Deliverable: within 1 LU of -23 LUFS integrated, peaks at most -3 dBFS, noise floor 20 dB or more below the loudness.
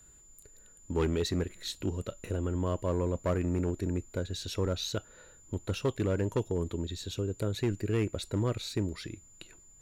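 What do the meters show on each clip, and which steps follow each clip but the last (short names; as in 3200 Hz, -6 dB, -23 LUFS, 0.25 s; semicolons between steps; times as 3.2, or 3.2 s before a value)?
clipped 0.9%; flat tops at -22.5 dBFS; steady tone 7100 Hz; tone level -56 dBFS; loudness -33.0 LUFS; peak -22.5 dBFS; loudness target -23.0 LUFS
-> clip repair -22.5 dBFS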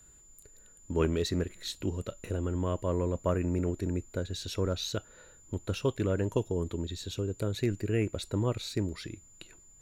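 clipped 0.0%; steady tone 7100 Hz; tone level -56 dBFS
-> notch 7100 Hz, Q 30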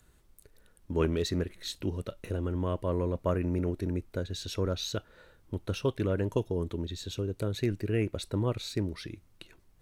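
steady tone none; loudness -32.5 LUFS; peak -14.0 dBFS; loudness target -23.0 LUFS
-> gain +9.5 dB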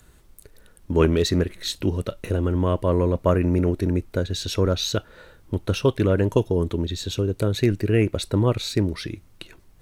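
loudness -23.0 LUFS; peak -4.5 dBFS; noise floor -53 dBFS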